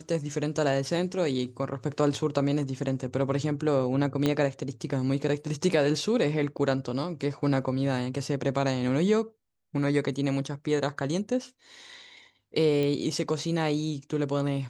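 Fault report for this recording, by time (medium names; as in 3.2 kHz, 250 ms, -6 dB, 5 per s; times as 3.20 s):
4.26 s: pop -12 dBFS
6.57–6.58 s: dropout 7.8 ms
12.83 s: pop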